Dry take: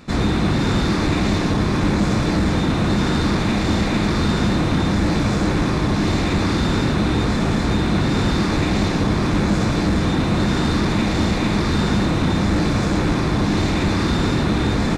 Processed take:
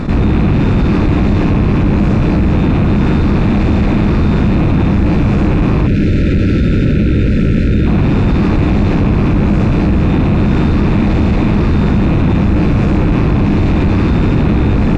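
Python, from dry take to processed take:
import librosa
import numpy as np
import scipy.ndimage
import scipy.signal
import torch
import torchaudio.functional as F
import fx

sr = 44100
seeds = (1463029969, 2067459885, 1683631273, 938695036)

p1 = fx.rattle_buzz(x, sr, strikes_db=-28.0, level_db=-16.0)
p2 = fx.tilt_eq(p1, sr, slope=-2.0)
p3 = fx.spec_erase(p2, sr, start_s=5.87, length_s=2.0, low_hz=610.0, high_hz=1300.0)
p4 = fx.high_shelf(p3, sr, hz=3400.0, db=-10.0)
p5 = 10.0 ** (-11.0 / 20.0) * np.tanh(p4 / 10.0 ** (-11.0 / 20.0))
p6 = p4 + F.gain(torch.from_numpy(p5), -6.5).numpy()
p7 = fx.env_flatten(p6, sr, amount_pct=70)
y = F.gain(torch.from_numpy(p7), -2.0).numpy()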